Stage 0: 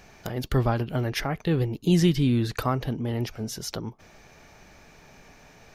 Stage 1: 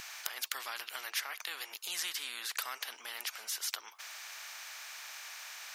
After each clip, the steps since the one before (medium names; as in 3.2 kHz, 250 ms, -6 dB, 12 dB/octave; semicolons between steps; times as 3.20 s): high-pass 1.3 kHz 24 dB/octave; in parallel at -3 dB: compression, threshold -44 dBFS, peak gain reduction 17.5 dB; on the sum: spectrum-flattening compressor 2:1; trim +1 dB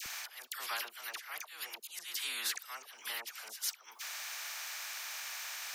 treble shelf 10 kHz +5.5 dB; slow attack 277 ms; phase dispersion lows, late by 61 ms, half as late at 1.1 kHz; trim +3 dB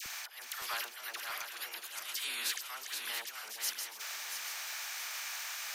backward echo that repeats 340 ms, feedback 66%, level -5.5 dB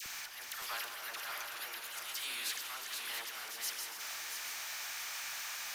companding laws mixed up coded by mu; on a send at -5 dB: reverberation RT60 5.5 s, pre-delay 38 ms; on the sum: trim -5 dB